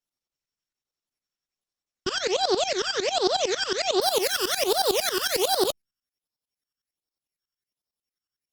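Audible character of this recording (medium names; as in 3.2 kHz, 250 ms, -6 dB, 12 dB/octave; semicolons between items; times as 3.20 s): a buzz of ramps at a fixed pitch in blocks of 8 samples; tremolo saw up 11 Hz, depth 90%; phasing stages 12, 1.3 Hz, lowest notch 690–2400 Hz; Opus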